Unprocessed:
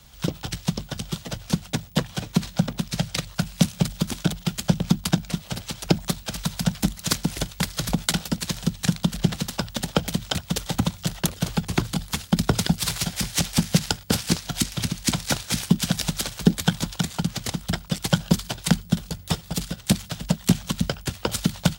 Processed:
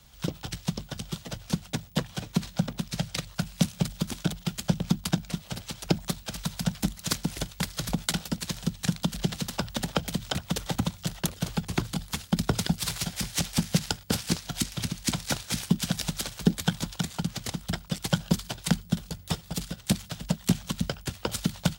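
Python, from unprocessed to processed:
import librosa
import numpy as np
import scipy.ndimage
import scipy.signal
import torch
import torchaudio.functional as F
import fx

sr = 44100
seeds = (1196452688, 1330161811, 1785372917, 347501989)

y = fx.band_squash(x, sr, depth_pct=70, at=(9.02, 10.76))
y = F.gain(torch.from_numpy(y), -5.0).numpy()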